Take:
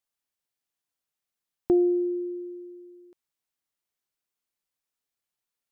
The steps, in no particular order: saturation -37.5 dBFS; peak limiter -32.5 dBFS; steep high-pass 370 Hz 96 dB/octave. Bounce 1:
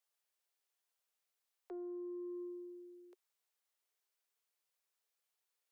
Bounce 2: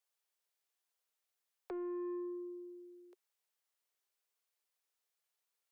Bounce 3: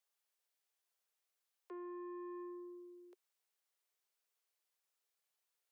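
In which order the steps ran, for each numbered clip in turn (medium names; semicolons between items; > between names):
peak limiter > steep high-pass > saturation; steep high-pass > peak limiter > saturation; peak limiter > saturation > steep high-pass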